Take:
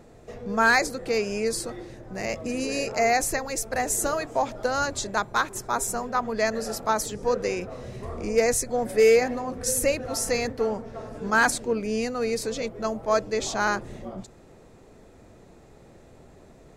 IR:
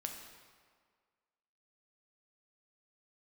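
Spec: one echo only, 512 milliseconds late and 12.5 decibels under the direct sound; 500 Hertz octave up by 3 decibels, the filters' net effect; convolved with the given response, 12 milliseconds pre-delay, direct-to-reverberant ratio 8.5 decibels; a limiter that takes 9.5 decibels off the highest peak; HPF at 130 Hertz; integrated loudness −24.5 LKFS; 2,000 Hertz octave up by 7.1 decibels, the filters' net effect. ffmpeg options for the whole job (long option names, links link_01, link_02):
-filter_complex "[0:a]highpass=130,equalizer=frequency=500:width_type=o:gain=3,equalizer=frequency=2000:width_type=o:gain=9,alimiter=limit=-13.5dB:level=0:latency=1,aecho=1:1:512:0.237,asplit=2[link_01][link_02];[1:a]atrim=start_sample=2205,adelay=12[link_03];[link_02][link_03]afir=irnorm=-1:irlink=0,volume=-7.5dB[link_04];[link_01][link_04]amix=inputs=2:normalize=0"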